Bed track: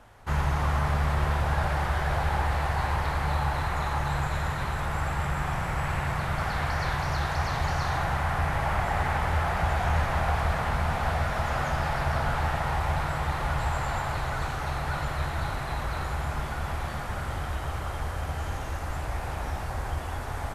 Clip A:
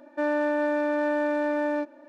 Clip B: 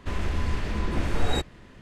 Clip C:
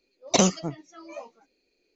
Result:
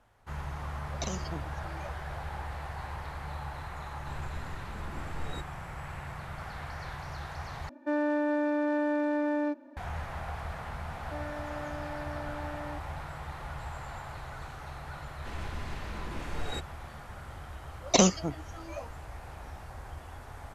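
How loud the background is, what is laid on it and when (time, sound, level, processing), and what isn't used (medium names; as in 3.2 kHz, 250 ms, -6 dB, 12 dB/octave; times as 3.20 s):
bed track -12 dB
0.68 s: add C -6 dB + compression 5:1, threshold -27 dBFS
4.00 s: add B -15 dB
7.69 s: replace with A -5.5 dB + small resonant body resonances 250/1000 Hz, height 10 dB
10.94 s: add A -9 dB + compression 2:1, threshold -36 dBFS
15.19 s: add B -8 dB + bass shelf 490 Hz -5 dB
17.60 s: add C -1.5 dB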